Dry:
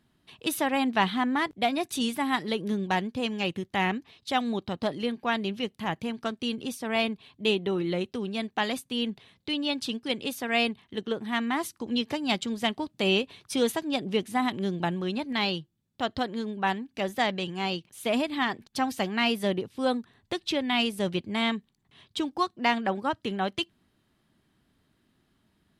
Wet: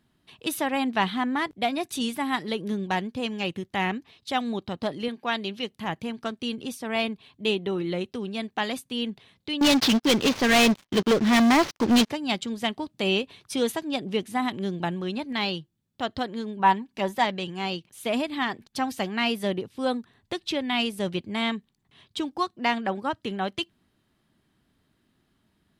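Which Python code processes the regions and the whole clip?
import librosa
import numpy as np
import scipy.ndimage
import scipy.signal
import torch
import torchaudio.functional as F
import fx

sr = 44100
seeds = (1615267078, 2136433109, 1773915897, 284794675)

y = fx.chain(x, sr, fx.highpass(hz=220.0, slope=6),
    fx.dynamic_eq(hz=4000.0, q=1.6, threshold_db=-47.0, ratio=4.0, max_db=5), at=(5.08, 5.69))
y = fx.chain(y, sr, fx.cvsd(bps=32000),
    fx.leveller(passes=5),
    fx.upward_expand(threshold_db=-30.0, expansion=1.5), at=(9.61, 12.1))
y = fx.chain(y, sr, fx.peak_eq(hz=960.0, db=10.5, octaves=0.2),
    fx.comb(ms=5.3, depth=0.4), at=(16.59, 17.25))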